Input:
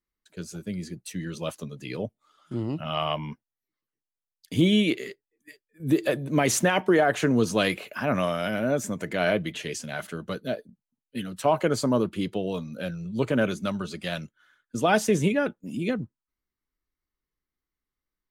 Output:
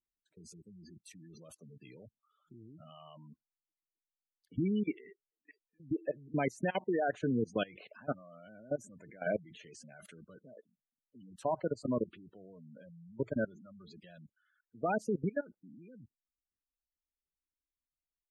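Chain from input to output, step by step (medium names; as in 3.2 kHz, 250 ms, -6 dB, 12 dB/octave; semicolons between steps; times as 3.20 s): level held to a coarse grid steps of 23 dB; spectral gate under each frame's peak -15 dB strong; trim -7 dB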